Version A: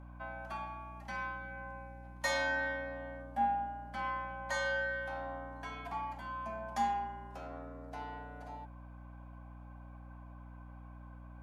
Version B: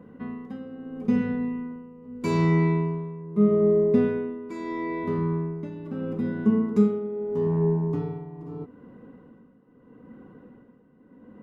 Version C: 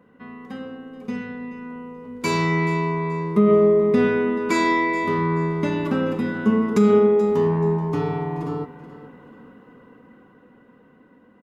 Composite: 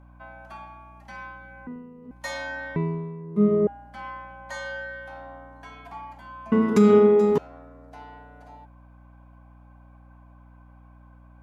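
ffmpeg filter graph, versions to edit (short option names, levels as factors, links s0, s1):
-filter_complex "[1:a]asplit=2[s0][s1];[0:a]asplit=4[s2][s3][s4][s5];[s2]atrim=end=1.672[s6];[s0]atrim=start=1.668:end=2.112[s7];[s3]atrim=start=2.108:end=2.762[s8];[s1]atrim=start=2.758:end=3.672[s9];[s4]atrim=start=3.668:end=6.522[s10];[2:a]atrim=start=6.518:end=7.382[s11];[s5]atrim=start=7.378[s12];[s6][s7]acrossfade=d=0.004:c1=hsin:c2=hsin[s13];[s13][s8]acrossfade=d=0.004:c1=hsin:c2=hsin[s14];[s14][s9]acrossfade=d=0.004:c1=hsin:c2=hsin[s15];[s15][s10]acrossfade=d=0.004:c1=hsin:c2=hsin[s16];[s16][s11]acrossfade=d=0.004:c1=hsin:c2=hsin[s17];[s17][s12]acrossfade=d=0.004:c1=hsin:c2=hsin"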